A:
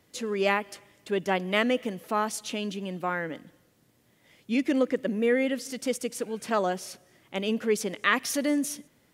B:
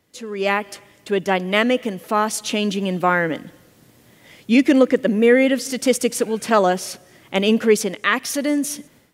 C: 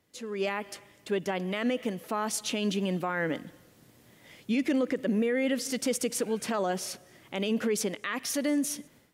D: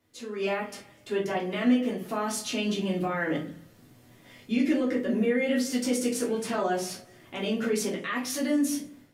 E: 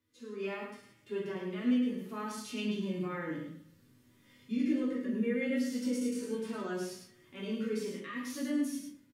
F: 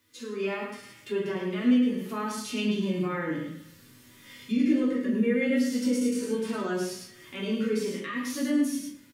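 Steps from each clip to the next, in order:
level rider gain up to 15 dB; trim -1 dB
peak limiter -13 dBFS, peak gain reduction 11 dB; trim -6.5 dB
simulated room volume 210 m³, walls furnished, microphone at 3.2 m; trim -5.5 dB
peaking EQ 700 Hz -13.5 dB 0.45 oct; harmonic-percussive split percussive -18 dB; delay 105 ms -5.5 dB; trim -6.5 dB
tape noise reduction on one side only encoder only; trim +7 dB

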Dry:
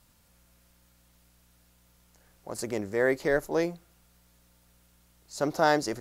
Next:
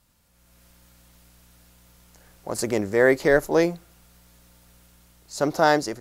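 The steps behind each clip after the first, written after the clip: level rider gain up to 10 dB; trim -2 dB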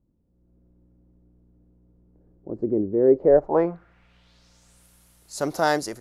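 low-pass sweep 340 Hz -> 11 kHz, 3.01–4.87 s; trim -3 dB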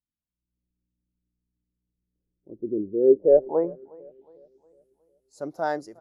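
feedback delay 362 ms, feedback 58%, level -16 dB; spectral contrast expander 1.5:1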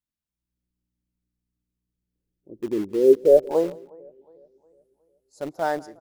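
in parallel at -12 dB: bit crusher 5-bit; on the sum: delay 175 ms -23 dB

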